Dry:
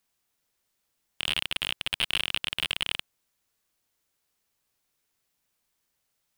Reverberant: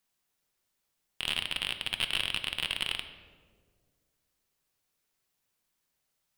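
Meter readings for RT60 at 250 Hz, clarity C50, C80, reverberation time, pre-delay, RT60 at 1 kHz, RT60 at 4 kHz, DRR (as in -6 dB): 2.2 s, 10.0 dB, 12.0 dB, 1.8 s, 4 ms, 1.5 s, 0.90 s, 7.5 dB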